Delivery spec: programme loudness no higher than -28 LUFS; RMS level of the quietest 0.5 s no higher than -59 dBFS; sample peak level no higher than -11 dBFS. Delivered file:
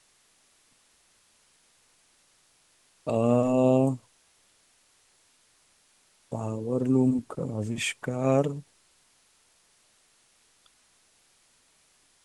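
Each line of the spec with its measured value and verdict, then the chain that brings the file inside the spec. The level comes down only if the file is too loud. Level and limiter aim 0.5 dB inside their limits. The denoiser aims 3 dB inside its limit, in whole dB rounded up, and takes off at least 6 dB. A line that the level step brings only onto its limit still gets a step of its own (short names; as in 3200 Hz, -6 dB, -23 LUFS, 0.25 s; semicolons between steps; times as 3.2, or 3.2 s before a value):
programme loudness -26.5 LUFS: fail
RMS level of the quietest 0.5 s -65 dBFS: OK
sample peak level -10.0 dBFS: fail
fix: gain -2 dB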